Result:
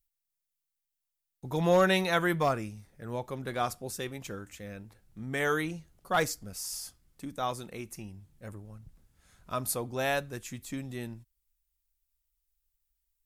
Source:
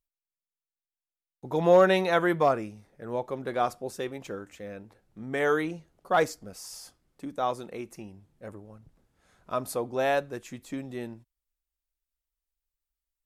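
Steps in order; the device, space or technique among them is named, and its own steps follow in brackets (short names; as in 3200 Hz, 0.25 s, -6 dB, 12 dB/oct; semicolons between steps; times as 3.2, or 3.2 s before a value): smiley-face EQ (low shelf 160 Hz +6.5 dB; bell 490 Hz -8 dB 2.6 oct; high shelf 7700 Hz +8.5 dB); gain +1.5 dB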